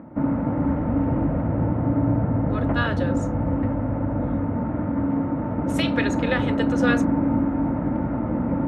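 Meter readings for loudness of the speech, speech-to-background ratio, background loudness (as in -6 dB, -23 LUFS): -28.5 LUFS, -5.0 dB, -23.5 LUFS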